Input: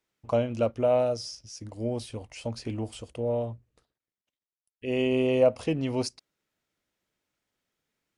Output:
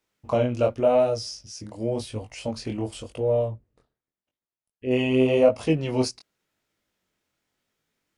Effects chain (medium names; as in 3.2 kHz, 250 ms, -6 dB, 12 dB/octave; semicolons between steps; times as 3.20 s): 3.48–4.91 s: treble shelf 2 kHz -11 dB; chorus 0.89 Hz, delay 18.5 ms, depth 6 ms; trim +7 dB